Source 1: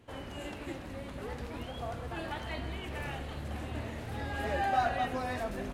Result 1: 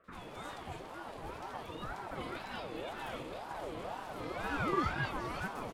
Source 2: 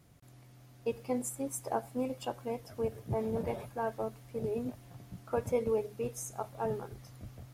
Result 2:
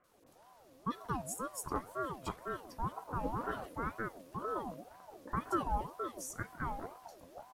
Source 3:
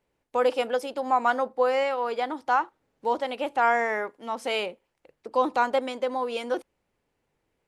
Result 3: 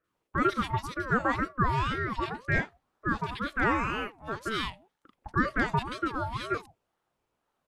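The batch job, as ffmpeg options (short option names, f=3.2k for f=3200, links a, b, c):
-filter_complex "[0:a]acrossover=split=190|1600[a][b][c];[c]adelay=40[d];[a]adelay=130[e];[e][b][d]amix=inputs=3:normalize=0,aeval=exprs='val(0)*sin(2*PI*640*n/s+640*0.4/2*sin(2*PI*2*n/s))':c=same"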